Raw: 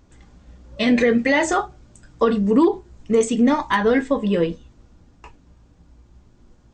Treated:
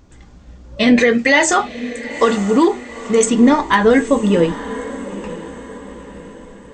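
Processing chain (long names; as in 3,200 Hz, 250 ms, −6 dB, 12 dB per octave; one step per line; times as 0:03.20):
0:00.99–0:03.26: spectral tilt +2 dB per octave
feedback delay with all-pass diffusion 911 ms, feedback 44%, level −14 dB
level +5.5 dB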